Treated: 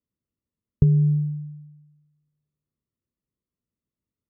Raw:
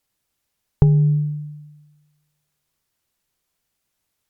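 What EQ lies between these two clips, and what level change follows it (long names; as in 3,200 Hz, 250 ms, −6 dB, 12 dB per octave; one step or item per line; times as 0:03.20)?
moving average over 56 samples
high-pass filter 46 Hz
parametric band 230 Hz +6 dB 0.29 octaves
−2.5 dB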